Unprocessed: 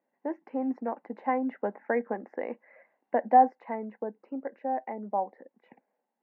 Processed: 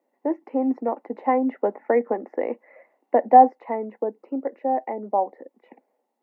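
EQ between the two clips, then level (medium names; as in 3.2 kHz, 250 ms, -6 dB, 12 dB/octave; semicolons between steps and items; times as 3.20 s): high-pass 280 Hz 24 dB/octave; bass shelf 490 Hz +10 dB; band-stop 1.6 kHz, Q 6.1; +4.0 dB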